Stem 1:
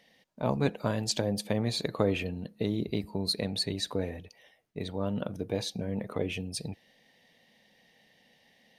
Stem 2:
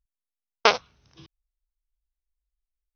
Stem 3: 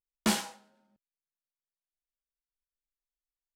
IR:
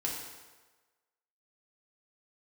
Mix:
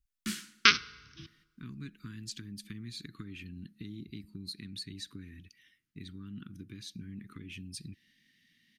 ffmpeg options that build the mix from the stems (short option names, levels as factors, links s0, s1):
-filter_complex "[0:a]acompressor=threshold=0.0158:ratio=3,adelay=1200,volume=0.631[s0];[1:a]volume=1.06,asplit=2[s1][s2];[s2]volume=0.0944[s3];[2:a]volume=0.355,asplit=2[s4][s5];[s5]volume=0.119[s6];[3:a]atrim=start_sample=2205[s7];[s3][s6]amix=inputs=2:normalize=0[s8];[s8][s7]afir=irnorm=-1:irlink=0[s9];[s0][s1][s4][s9]amix=inputs=4:normalize=0,asuperstop=centerf=660:order=8:qfactor=0.66"